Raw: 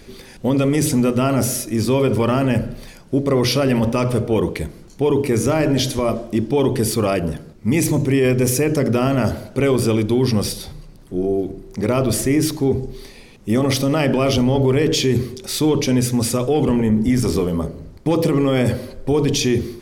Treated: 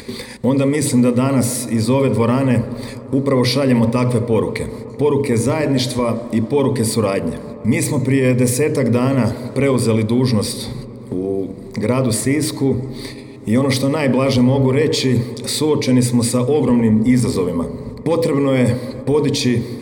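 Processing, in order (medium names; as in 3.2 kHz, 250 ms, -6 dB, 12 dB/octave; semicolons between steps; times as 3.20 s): high-pass 74 Hz 12 dB/octave; gate -40 dBFS, range -19 dB; rippled EQ curve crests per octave 0.97, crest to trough 9 dB; upward compressor, threshold -17 dBFS; feedback echo behind a low-pass 128 ms, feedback 84%, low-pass 1.3 kHz, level -17 dB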